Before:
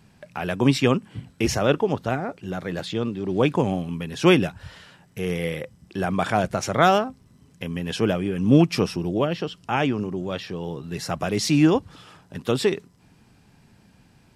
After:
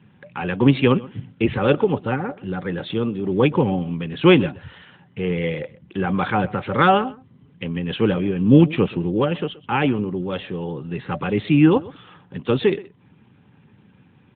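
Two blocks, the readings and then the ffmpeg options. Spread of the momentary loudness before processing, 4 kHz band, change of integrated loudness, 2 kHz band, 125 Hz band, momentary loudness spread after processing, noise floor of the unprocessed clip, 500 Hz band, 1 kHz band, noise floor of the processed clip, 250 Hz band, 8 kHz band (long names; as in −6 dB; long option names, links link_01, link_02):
14 LU, −0.5 dB, +3.0 dB, +2.0 dB, +3.5 dB, 15 LU, −57 dBFS, +2.5 dB, +2.0 dB, −54 dBFS, +3.5 dB, below −40 dB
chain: -af "asuperstop=centerf=660:order=20:qfactor=5,aecho=1:1:126:0.1,volume=3.5dB" -ar 8000 -c:a libopencore_amrnb -b:a 12200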